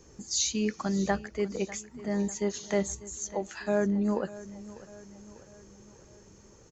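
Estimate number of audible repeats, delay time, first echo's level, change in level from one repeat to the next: 4, 596 ms, -17.5 dB, -5.5 dB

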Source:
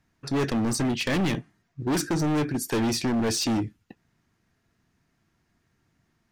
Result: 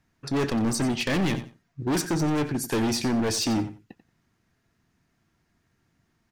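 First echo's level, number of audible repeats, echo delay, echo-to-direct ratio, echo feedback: -13.0 dB, 2, 90 ms, -13.0 dB, 18%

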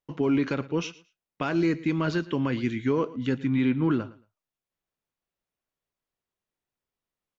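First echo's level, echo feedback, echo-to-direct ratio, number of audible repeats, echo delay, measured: -19.0 dB, 20%, -19.0 dB, 2, 113 ms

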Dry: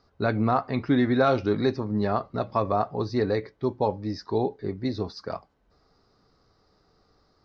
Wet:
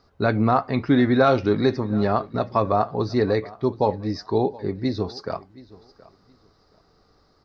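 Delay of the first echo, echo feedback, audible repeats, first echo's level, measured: 722 ms, 22%, 2, -21.0 dB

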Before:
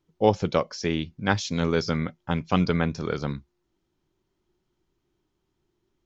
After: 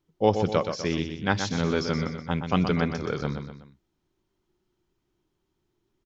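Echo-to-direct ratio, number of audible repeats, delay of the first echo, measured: -6.5 dB, 3, 124 ms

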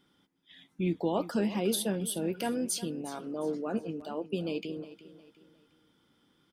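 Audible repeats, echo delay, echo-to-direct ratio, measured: 3, 359 ms, -15.0 dB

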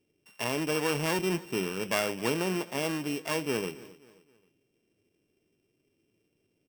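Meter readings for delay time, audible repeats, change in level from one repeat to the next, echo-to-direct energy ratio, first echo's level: 265 ms, 2, -7.5 dB, -19.0 dB, -20.0 dB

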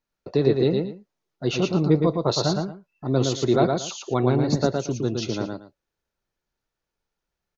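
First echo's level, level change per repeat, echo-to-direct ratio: -4.0 dB, -13.5 dB, -4.0 dB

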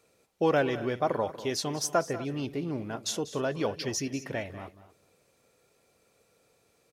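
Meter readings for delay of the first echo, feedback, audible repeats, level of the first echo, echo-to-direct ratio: 192 ms, no regular repeats, 3, -15.5 dB, -13.5 dB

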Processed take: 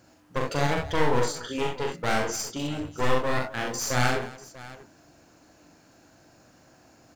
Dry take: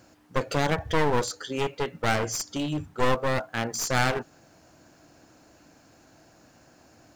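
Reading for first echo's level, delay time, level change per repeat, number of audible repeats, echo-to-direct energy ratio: -3.5 dB, 41 ms, no regular repeats, 4, -0.5 dB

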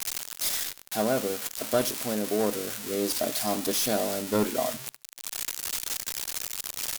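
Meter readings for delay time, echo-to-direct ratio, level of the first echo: 73 ms, -22.0 dB, -22.5 dB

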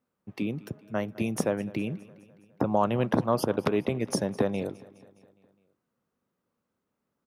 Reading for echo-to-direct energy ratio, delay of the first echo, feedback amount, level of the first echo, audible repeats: -19.0 dB, 207 ms, 59%, -21.0 dB, 4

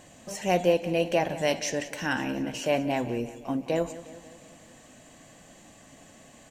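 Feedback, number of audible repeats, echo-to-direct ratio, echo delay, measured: 58%, 5, -13.5 dB, 180 ms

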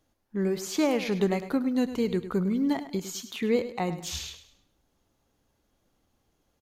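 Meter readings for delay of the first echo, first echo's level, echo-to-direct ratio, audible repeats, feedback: 103 ms, -12.5 dB, -12.0 dB, 3, 35%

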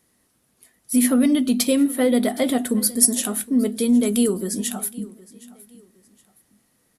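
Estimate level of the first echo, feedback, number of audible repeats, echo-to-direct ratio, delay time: -21.0 dB, 33%, 2, -20.5 dB, 766 ms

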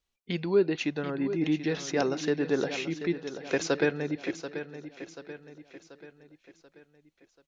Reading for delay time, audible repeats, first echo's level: 735 ms, 4, -11.0 dB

